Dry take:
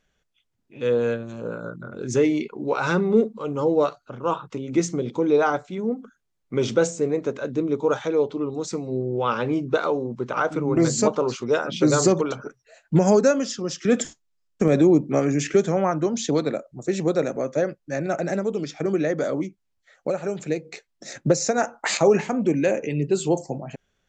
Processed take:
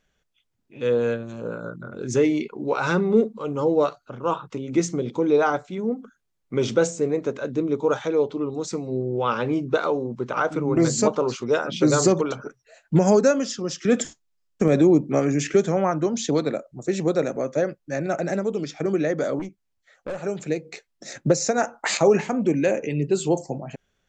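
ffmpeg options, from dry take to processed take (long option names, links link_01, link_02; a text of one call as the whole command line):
ffmpeg -i in.wav -filter_complex "[0:a]asettb=1/sr,asplit=3[link_01][link_02][link_03];[link_01]atrim=end=19.394[link_04];[link_02]atrim=start=19.39:end=20.19,asetpts=PTS-STARTPTS,afade=type=in:duration=0.004:curve=qsin,afade=type=out:start_time=0.796:duration=0.004:curve=qsin,aeval=exprs='(tanh(20*val(0)+0.35)-tanh(0.35))/20':channel_layout=same[link_05];[link_03]atrim=start=20.186[link_06];[link_04][link_05]acrossfade=duration=0.004:curve1=hsin:curve2=qsin[link_07];[link_07][link_06]acrossfade=duration=0.004:curve1=qsin:curve2=hsin" out.wav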